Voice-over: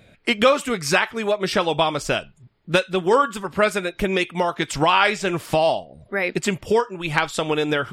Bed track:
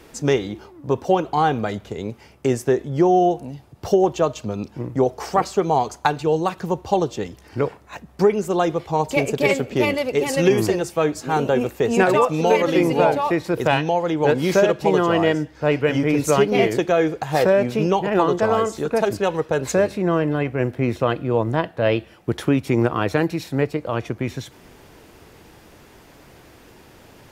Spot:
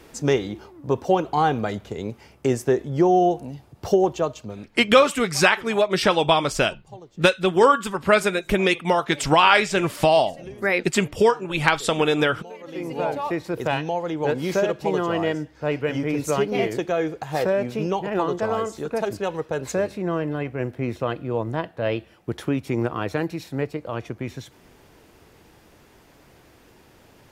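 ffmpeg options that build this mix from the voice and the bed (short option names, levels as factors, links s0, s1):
-filter_complex "[0:a]adelay=4500,volume=1.19[s0];[1:a]volume=6.68,afade=t=out:st=3.95:d=0.95:silence=0.0794328,afade=t=in:st=12.6:d=0.67:silence=0.125893[s1];[s0][s1]amix=inputs=2:normalize=0"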